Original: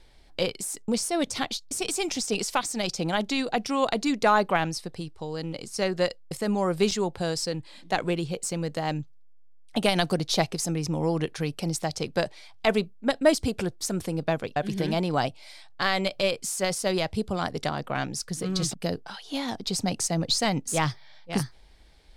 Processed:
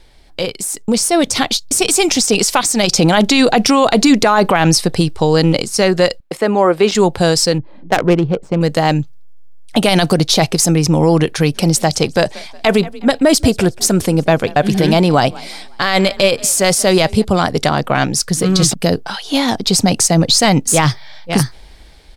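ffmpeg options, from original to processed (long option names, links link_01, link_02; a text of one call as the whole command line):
ffmpeg -i in.wav -filter_complex "[0:a]asettb=1/sr,asplit=3[link_01][link_02][link_03];[link_01]atrim=end=6.204[link_04];[link_02]atrim=start=6.2:end=6.95,asetpts=PTS-STARTPTS,afade=type=in:duration=0.004:curve=qsin,afade=type=out:start_time=0.746:duration=0.004:curve=qsin,acrossover=split=230 3300:gain=0.0708 1 0.224[link_05][link_06][link_07];[link_05][link_06][link_07]amix=inputs=3:normalize=0[link_08];[link_03]atrim=start=6.946[link_09];[link_04][link_08]acrossfade=duration=0.004:curve1=hsin:curve2=qsin[link_10];[link_10][link_09]acrossfade=duration=0.004:curve1=qsin:curve2=hsin,asettb=1/sr,asplit=3[link_11][link_12][link_13];[link_11]atrim=end=7.584[link_14];[link_12]atrim=start=7.58:end=8.61,asetpts=PTS-STARTPTS,afade=type=in:duration=0.004:curve=qsin,afade=type=out:start_time=1.026:duration=0.004:curve=qsin,adynamicsmooth=sensitivity=2:basefreq=680[link_15];[link_13]atrim=start=8.606[link_16];[link_14][link_15]acrossfade=duration=0.004:curve1=hsin:curve2=qsin[link_17];[link_17][link_16]acrossfade=duration=0.004:curve1=qsin:curve2=hsin,asplit=3[link_18][link_19][link_20];[link_18]afade=type=out:start_time=11.54:duration=0.02[link_21];[link_19]asplit=4[link_22][link_23][link_24][link_25];[link_23]adelay=182,afreqshift=34,volume=-24dB[link_26];[link_24]adelay=364,afreqshift=68,volume=-31.5dB[link_27];[link_25]adelay=546,afreqshift=102,volume=-39.1dB[link_28];[link_22][link_26][link_27][link_28]amix=inputs=4:normalize=0,afade=type=in:start_time=11.54:duration=0.02,afade=type=out:start_time=17.23:duration=0.02[link_29];[link_20]afade=type=in:start_time=17.23:duration=0.02[link_30];[link_21][link_29][link_30]amix=inputs=3:normalize=0,asplit=3[link_31][link_32][link_33];[link_31]atrim=end=2.922[link_34];[link_32]atrim=start=2.918:end=5.622,asetpts=PTS-STARTPTS,volume=6dB[link_35];[link_33]atrim=start=5.618[link_36];[link_34][link_35]acrossfade=duration=0.004:curve1=hsin:curve2=hsin[link_37];[link_37][link_36]acrossfade=duration=0.004:curve1=hsin:curve2=hsin,highshelf=frequency=11000:gain=3.5,alimiter=limit=-17.5dB:level=0:latency=1:release=30,dynaudnorm=framelen=180:gausssize=11:maxgain=7dB,volume=8.5dB" out.wav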